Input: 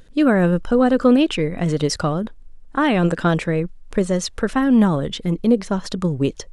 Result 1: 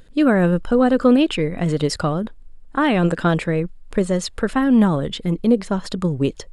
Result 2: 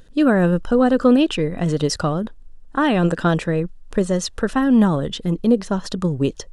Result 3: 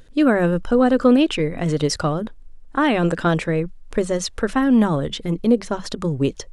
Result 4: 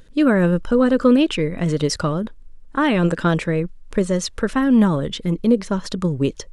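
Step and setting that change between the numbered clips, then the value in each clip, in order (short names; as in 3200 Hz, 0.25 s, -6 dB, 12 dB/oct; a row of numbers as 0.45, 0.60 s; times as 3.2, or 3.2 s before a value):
notch, frequency: 5900, 2200, 190, 740 Hz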